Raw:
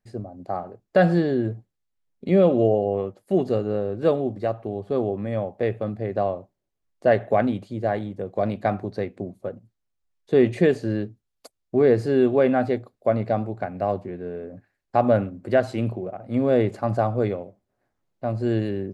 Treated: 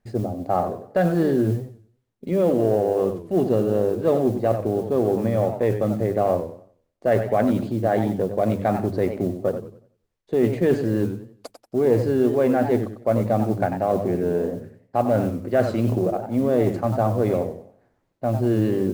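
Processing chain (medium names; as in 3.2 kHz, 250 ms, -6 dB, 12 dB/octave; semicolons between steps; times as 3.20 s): tilt EQ -2 dB/octave; reverse; compression 6:1, threshold -24 dBFS, peak gain reduction 14 dB; reverse; Chebyshev shaper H 4 -30 dB, 8 -44 dB, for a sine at -14.5 dBFS; modulation noise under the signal 33 dB; bass shelf 160 Hz -7 dB; hum notches 50/100/150/200 Hz; modulated delay 92 ms, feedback 32%, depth 185 cents, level -9 dB; trim +8.5 dB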